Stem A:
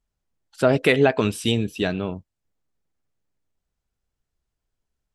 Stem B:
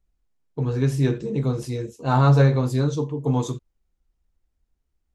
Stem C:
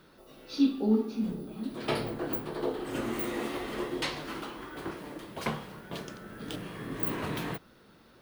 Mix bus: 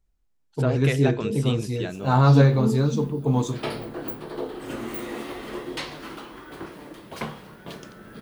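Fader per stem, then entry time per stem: -9.0 dB, 0.0 dB, +0.5 dB; 0.00 s, 0.00 s, 1.75 s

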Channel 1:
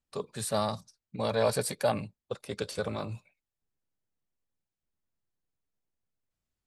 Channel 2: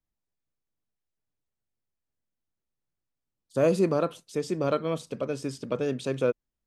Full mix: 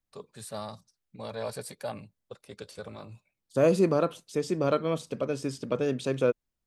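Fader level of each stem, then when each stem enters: -8.5 dB, +0.5 dB; 0.00 s, 0.00 s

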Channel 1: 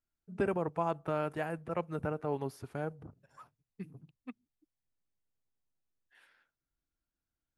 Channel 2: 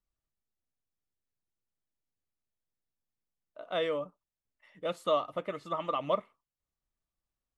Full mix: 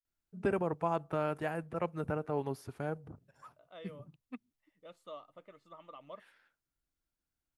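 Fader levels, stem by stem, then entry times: 0.0 dB, -19.0 dB; 0.05 s, 0.00 s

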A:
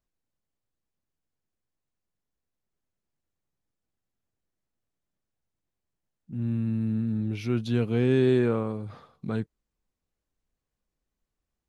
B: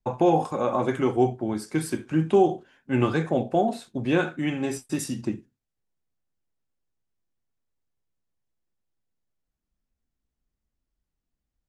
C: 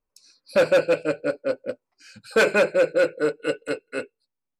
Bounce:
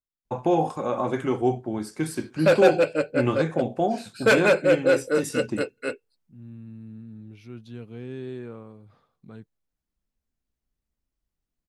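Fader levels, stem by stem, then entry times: -14.0 dB, -1.5 dB, 0.0 dB; 0.00 s, 0.25 s, 1.90 s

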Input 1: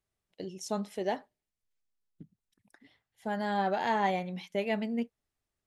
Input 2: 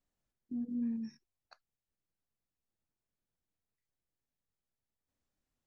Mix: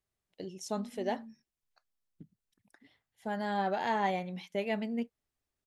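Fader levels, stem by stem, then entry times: -2.0 dB, -10.0 dB; 0.00 s, 0.25 s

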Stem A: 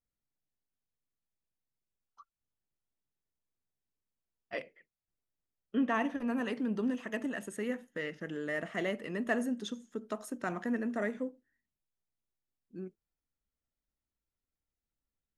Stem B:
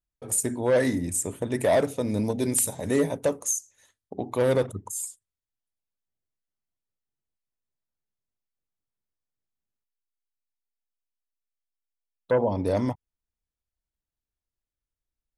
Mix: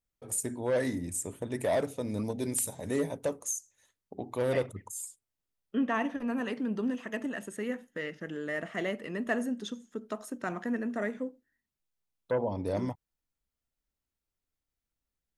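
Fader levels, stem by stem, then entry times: +1.0 dB, -7.0 dB; 0.00 s, 0.00 s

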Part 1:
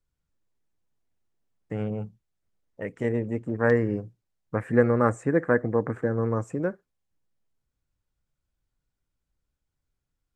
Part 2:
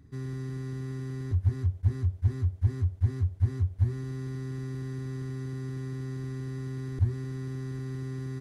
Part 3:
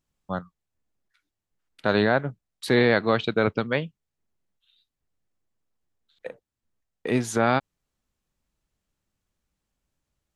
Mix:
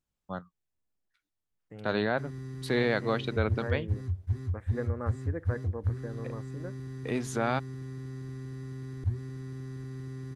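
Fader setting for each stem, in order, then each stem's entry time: -15.0 dB, -4.5 dB, -7.5 dB; 0.00 s, 2.05 s, 0.00 s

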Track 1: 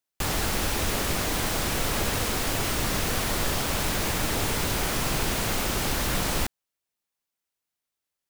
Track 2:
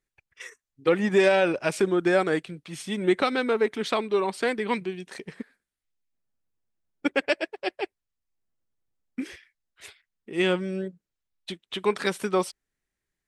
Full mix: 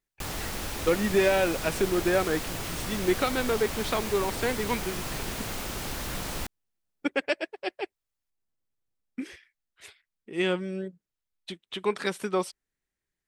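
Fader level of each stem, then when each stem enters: -7.5 dB, -3.0 dB; 0.00 s, 0.00 s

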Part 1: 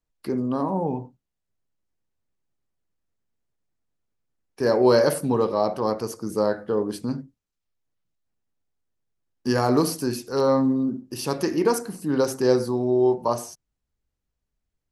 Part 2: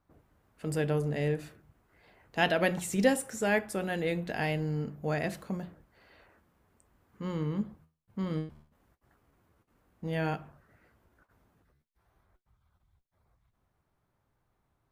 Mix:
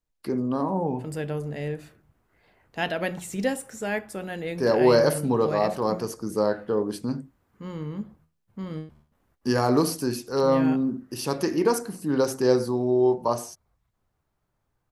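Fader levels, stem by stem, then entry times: -1.0 dB, -1.0 dB; 0.00 s, 0.40 s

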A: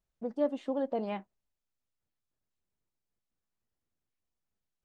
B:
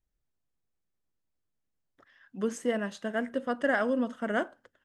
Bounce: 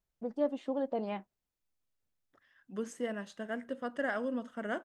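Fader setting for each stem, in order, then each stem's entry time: -1.5 dB, -7.0 dB; 0.00 s, 0.35 s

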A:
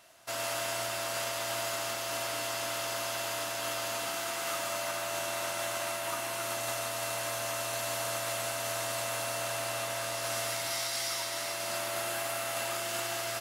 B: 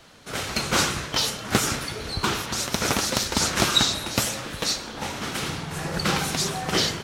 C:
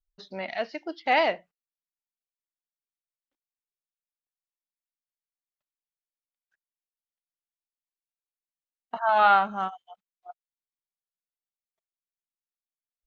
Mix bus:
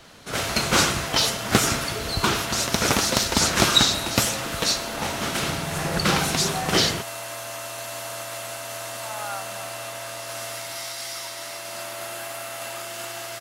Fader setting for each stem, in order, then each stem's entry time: +0.5 dB, +2.5 dB, -15.5 dB; 0.05 s, 0.00 s, 0.00 s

